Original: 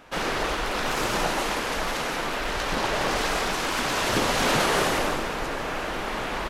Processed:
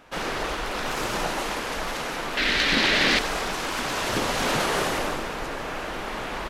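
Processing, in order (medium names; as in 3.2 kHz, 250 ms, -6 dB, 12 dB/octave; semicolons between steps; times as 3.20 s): 2.37–3.19 s: graphic EQ 250/1000/2000/4000 Hz +10/-4/+11/+12 dB; trim -2 dB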